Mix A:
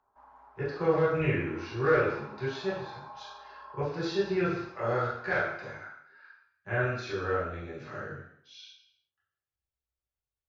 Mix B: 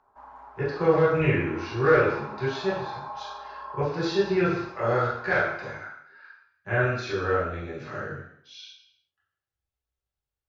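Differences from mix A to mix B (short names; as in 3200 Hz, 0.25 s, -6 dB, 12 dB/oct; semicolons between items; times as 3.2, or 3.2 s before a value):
speech +5.0 dB; background +9.0 dB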